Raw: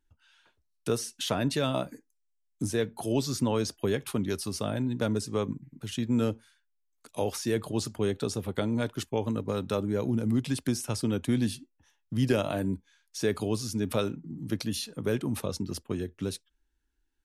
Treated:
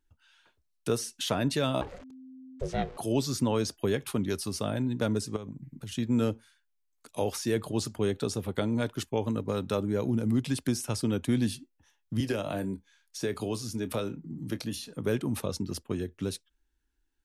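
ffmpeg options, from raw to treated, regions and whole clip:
ffmpeg -i in.wav -filter_complex "[0:a]asettb=1/sr,asplit=3[link_01][link_02][link_03];[link_01]atrim=end=1.814[link_04];[link_02]atrim=start=1.81:end=2.98,asetpts=PTS-STARTPTS,afade=type=in:duration=0.004:curve=qsin,afade=type=out:start_time=1.166:duration=0.004:curve=qsin,aeval=exprs='val(0)+0.5*0.0106*sgn(val(0))':channel_layout=same,lowpass=4000,aeval=exprs='val(0)*sin(2*PI*260*n/s)':channel_layout=same[link_05];[link_03]atrim=start=2.976[link_06];[link_04][link_05]acrossfade=duration=0.004:curve1=hsin:curve2=qsin[link_07];[link_07][link_06]acrossfade=duration=0.004:curve1=qsin:curve2=hsin,asettb=1/sr,asplit=3[link_08][link_09][link_10];[link_08]atrim=end=5.364[link_11];[link_09]atrim=start=5.36:end=5.98,asetpts=PTS-STARTPTS,afade=type=in:duration=0.004:curve=qsin,afade=type=out:start_time=0.616:duration=0.004:curve=qsin,bass=frequency=250:gain=5,treble=frequency=4000:gain=2,acompressor=threshold=-35dB:ratio=10:attack=3.2:release=140:knee=1:detection=peak[link_12];[link_10]atrim=start=5.976[link_13];[link_11][link_12]acrossfade=duration=0.004:curve1=hsin:curve2=qsin[link_14];[link_14][link_13]acrossfade=duration=0.004:curve1=qsin:curve2=hsin,asettb=1/sr,asplit=3[link_15][link_16][link_17];[link_15]atrim=end=12.204[link_18];[link_16]atrim=start=12.2:end=14.88,asetpts=PTS-STARTPTS,afade=type=in:duration=0.004:curve=qsin,afade=type=out:start_time=2.676:duration=0.004:curve=qsin,acrossover=split=340|1000[link_19][link_20][link_21];[link_19]acompressor=threshold=-33dB:ratio=4[link_22];[link_20]acompressor=threshold=-32dB:ratio=4[link_23];[link_21]acompressor=threshold=-38dB:ratio=4[link_24];[link_22][link_23][link_24]amix=inputs=3:normalize=0,asplit=2[link_25][link_26];[link_26]adelay=26,volume=-14dB[link_27];[link_25][link_27]amix=inputs=2:normalize=0,atrim=end_sample=118188[link_28];[link_17]atrim=start=14.876[link_29];[link_18][link_28]acrossfade=duration=0.004:curve1=hsin:curve2=qsin[link_30];[link_30][link_29]acrossfade=duration=0.004:curve1=qsin:curve2=hsin" out.wav

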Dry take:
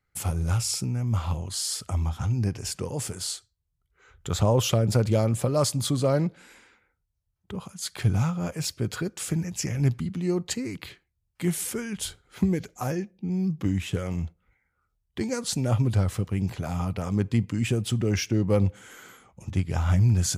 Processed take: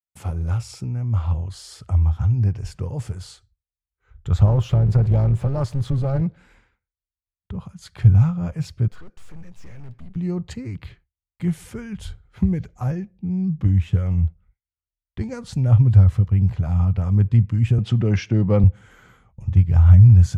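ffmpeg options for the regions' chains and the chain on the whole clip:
ffmpeg -i in.wav -filter_complex "[0:a]asettb=1/sr,asplit=3[link_01][link_02][link_03];[link_01]atrim=end=4.464[link_04];[link_02]atrim=start=4.46:end=6.22,asetpts=PTS-STARTPTS,afade=type=in:duration=0.004:curve=qsin,afade=type=out:start_time=1.756:duration=0.004:curve=qsin,aeval=exprs='val(0)+0.5*0.0224*sgn(val(0))':channel_layout=same,tremolo=f=270:d=0.621,highshelf=frequency=4100:gain=-5[link_05];[link_03]atrim=start=6.216[link_06];[link_04][link_05]acrossfade=duration=0.004:curve1=hsin:curve2=qsin[link_07];[link_07][link_06]acrossfade=duration=0.004:curve1=qsin:curve2=hsin,asettb=1/sr,asplit=3[link_08][link_09][link_10];[link_08]atrim=end=8.884[link_11];[link_09]atrim=start=8.88:end=10.16,asetpts=PTS-STARTPTS,afade=type=in:duration=0.004:curve=qsin,afade=type=out:start_time=1.276:duration=0.004:curve=qsin,highpass=320,aeval=exprs='(tanh(126*val(0)+0.5)-tanh(0.5))/126':channel_layout=same[link_12];[link_10]atrim=start=10.156[link_13];[link_11][link_12]acrossfade=duration=0.004:curve1=hsin:curve2=qsin[link_14];[link_14][link_13]acrossfade=duration=0.004:curve1=qsin:curve2=hsin,asettb=1/sr,asplit=3[link_15][link_16][link_17];[link_15]atrim=end=17.784[link_18];[link_16]atrim=start=17.78:end=18.64,asetpts=PTS-STARTPTS,afade=type=in:duration=0.004:curve=qsin,afade=type=out:start_time=0.856:duration=0.004:curve=qsin,acontrast=52,highpass=180,lowpass=5700[link_19];[link_17]atrim=start=18.636[link_20];[link_18][link_19]acrossfade=duration=0.004:curve1=hsin:curve2=qsin[link_21];[link_21][link_20]acrossfade=duration=0.004:curve1=qsin:curve2=hsin,agate=range=-33dB:threshold=-51dB:ratio=3:detection=peak,lowpass=frequency=1500:poles=1,asubboost=boost=7.5:cutoff=110" out.wav

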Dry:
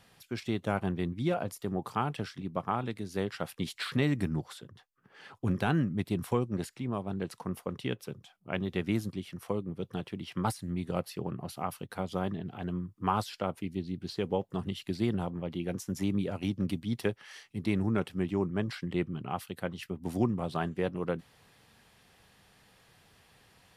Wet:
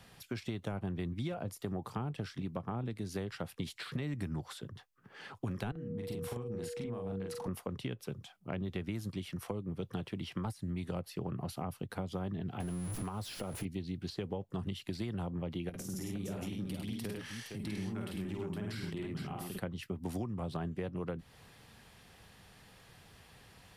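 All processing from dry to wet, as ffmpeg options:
ffmpeg -i in.wav -filter_complex "[0:a]asettb=1/sr,asplit=3[link_01][link_02][link_03];[link_01]atrim=end=5.714[link_04];[link_02]atrim=start=5.71:end=7.48,asetpts=PTS-STARTPTS,afade=type=in:duration=0.004:curve=qsin,afade=type=out:start_time=1.766:duration=0.004:curve=qsin,acompressor=threshold=-41dB:ratio=12:attack=3.2:release=140:knee=1:detection=peak,aeval=exprs='val(0)+0.00501*sin(2*PI*480*n/s)':channel_layout=same,asplit=2[link_05][link_06];[link_06]adelay=42,volume=-2.5dB[link_07];[link_05][link_07]amix=inputs=2:normalize=0,atrim=end_sample=78057[link_08];[link_03]atrim=start=7.476[link_09];[link_04][link_08]acrossfade=duration=0.004:curve1=hsin:curve2=qsin[link_10];[link_10][link_09]acrossfade=duration=0.004:curve1=qsin:curve2=hsin,asettb=1/sr,asplit=3[link_11][link_12][link_13];[link_11]atrim=end=12.604[link_14];[link_12]atrim=start=12.6:end=13.65,asetpts=PTS-STARTPTS,afade=type=in:duration=0.004:curve=qsin,afade=type=out:start_time=1.046:duration=0.004:curve=qsin,aeval=exprs='val(0)+0.5*0.0133*sgn(val(0))':channel_layout=same,aeval=exprs='val(0)+0.00447*sin(2*PI*10000*n/s)':channel_layout=same,acompressor=threshold=-38dB:ratio=3:attack=3.2:release=140:knee=1:detection=peak[link_15];[link_13]atrim=start=13.646[link_16];[link_14][link_15]acrossfade=duration=0.004:curve1=hsin:curve2=qsin[link_17];[link_17][link_16]acrossfade=duration=0.004:curve1=qsin:curve2=hsin,asettb=1/sr,asplit=3[link_18][link_19][link_20];[link_18]atrim=end=15.694[link_21];[link_19]atrim=start=15.69:end=19.58,asetpts=PTS-STARTPTS,afade=type=in:duration=0.004:curve=qsin,afade=type=out:start_time=3.886:duration=0.004:curve=qsin,highshelf=frequency=7000:gain=9,acompressor=threshold=-45dB:ratio=3:attack=3.2:release=140:knee=1:detection=peak,aecho=1:1:48|53|101|127|463:0.562|0.501|0.631|0.224|0.501,atrim=end_sample=171549[link_22];[link_20]atrim=start=19.576[link_23];[link_21][link_22]acrossfade=duration=0.004:curve1=hsin:curve2=qsin[link_24];[link_24][link_23]acrossfade=duration=0.004:curve1=qsin:curve2=hsin,acrossover=split=86|580[link_25][link_26][link_27];[link_25]acompressor=threshold=-50dB:ratio=4[link_28];[link_26]acompressor=threshold=-40dB:ratio=4[link_29];[link_27]acompressor=threshold=-47dB:ratio=4[link_30];[link_28][link_29][link_30]amix=inputs=3:normalize=0,lowshelf=frequency=140:gain=5.5,acompressor=threshold=-35dB:ratio=6,volume=2.5dB" out.wav

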